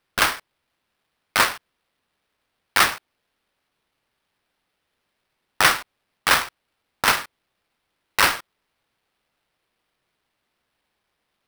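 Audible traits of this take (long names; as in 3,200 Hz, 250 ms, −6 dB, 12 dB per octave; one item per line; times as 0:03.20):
aliases and images of a low sample rate 7,000 Hz, jitter 20%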